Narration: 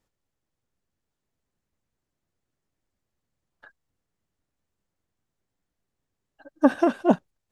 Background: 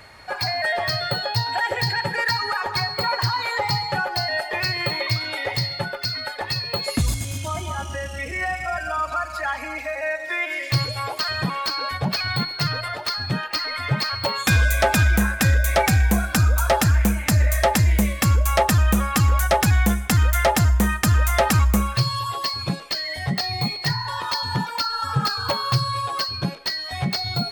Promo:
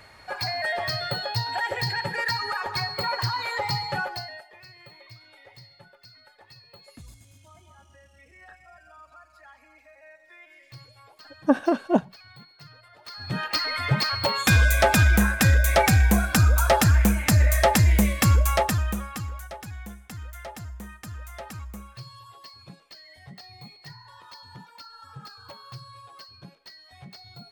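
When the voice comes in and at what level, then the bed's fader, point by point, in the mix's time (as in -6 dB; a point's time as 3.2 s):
4.85 s, -1.5 dB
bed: 4.05 s -4.5 dB
4.54 s -25 dB
12.9 s -25 dB
13.43 s -0.5 dB
18.4 s -0.5 dB
19.55 s -21 dB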